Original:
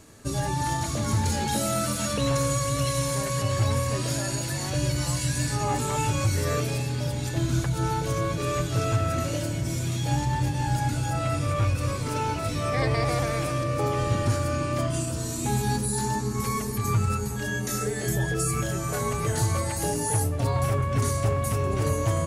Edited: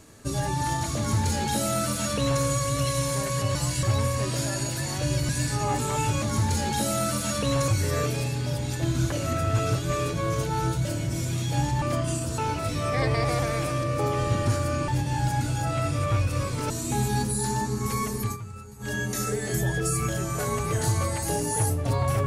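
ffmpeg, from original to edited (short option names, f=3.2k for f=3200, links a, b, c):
-filter_complex "[0:a]asplit=14[a][b][c][d][e][f][g][h][i][j][k][l][m][n];[a]atrim=end=3.552[o];[b]atrim=start=5.008:end=5.292[p];[c]atrim=start=3.548:end=5.012[q];[d]atrim=start=5.288:end=6.222[r];[e]atrim=start=0.968:end=2.432[s];[f]atrim=start=6.218:end=7.662[t];[g]atrim=start=7.658:end=9.392,asetpts=PTS-STARTPTS,areverse[u];[h]atrim=start=9.388:end=10.362[v];[i]atrim=start=14.678:end=15.242[w];[j]atrim=start=12.178:end=14.682[x];[k]atrim=start=10.358:end=12.182[y];[l]atrim=start=15.238:end=16.91,asetpts=PTS-STARTPTS,afade=t=out:st=1.542:d=0.13:c=qsin:silence=0.177828[z];[m]atrim=start=16.91:end=17.33,asetpts=PTS-STARTPTS,volume=-15dB[aa];[n]atrim=start=17.33,asetpts=PTS-STARTPTS,afade=t=in:d=0.13:c=qsin:silence=0.177828[ab];[o][p]acrossfade=d=0.004:c1=hsin:c2=hsin[ac];[ac][q]acrossfade=d=0.004:c1=hsin:c2=hsin[ad];[ad][r]acrossfade=d=0.004:c1=hsin:c2=hsin[ae];[ae][s]acrossfade=d=0.004:c1=hsin:c2=hsin[af];[af][t]acrossfade=d=0.004:c1=hsin:c2=hsin[ag];[ag][u]acrossfade=d=0.004:c1=hsin:c2=hsin[ah];[ah][v]acrossfade=d=0.004:c1=hsin:c2=hsin[ai];[ai][w]acrossfade=d=0.004:c1=hsin:c2=hsin[aj];[aj][x]acrossfade=d=0.004:c1=hsin:c2=hsin[ak];[ak][y]acrossfade=d=0.004:c1=hsin:c2=hsin[al];[z][aa][ab]concat=n=3:v=0:a=1[am];[al][am]acrossfade=d=0.004:c1=hsin:c2=hsin"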